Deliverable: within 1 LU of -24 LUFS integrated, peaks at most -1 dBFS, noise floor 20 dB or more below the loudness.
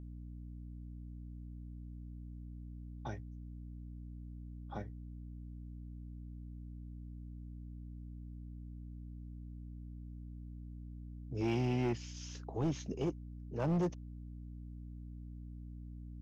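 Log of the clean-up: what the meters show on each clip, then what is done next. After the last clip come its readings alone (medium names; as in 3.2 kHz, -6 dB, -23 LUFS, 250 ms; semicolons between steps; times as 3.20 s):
clipped samples 0.8%; clipping level -28.5 dBFS; hum 60 Hz; highest harmonic 300 Hz; hum level -45 dBFS; loudness -43.5 LUFS; peak level -28.5 dBFS; loudness target -24.0 LUFS
-> clip repair -28.5 dBFS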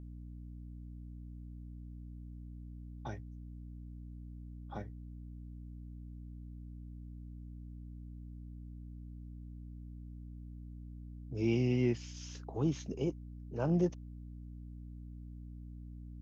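clipped samples 0.0%; hum 60 Hz; highest harmonic 300 Hz; hum level -45 dBFS
-> de-hum 60 Hz, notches 5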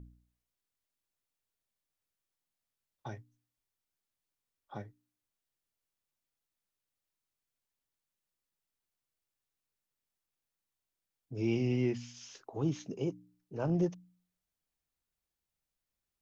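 hum not found; loudness -34.5 LUFS; peak level -21.0 dBFS; loudness target -24.0 LUFS
-> trim +10.5 dB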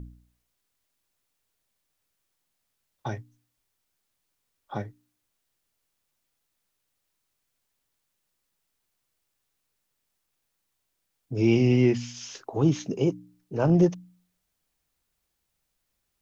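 loudness -24.5 LUFS; peak level -10.5 dBFS; noise floor -79 dBFS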